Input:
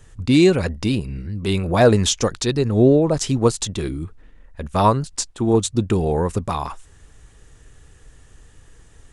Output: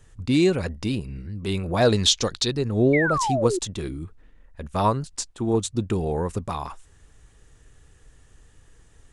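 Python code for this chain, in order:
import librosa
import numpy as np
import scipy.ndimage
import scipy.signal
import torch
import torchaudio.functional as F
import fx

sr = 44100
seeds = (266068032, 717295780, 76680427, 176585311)

y = fx.peak_eq(x, sr, hz=4000.0, db=11.5, octaves=0.88, at=(1.82, 2.48))
y = fx.spec_paint(y, sr, seeds[0], shape='fall', start_s=2.93, length_s=0.66, low_hz=340.0, high_hz=2300.0, level_db=-19.0)
y = y * 10.0 ** (-5.5 / 20.0)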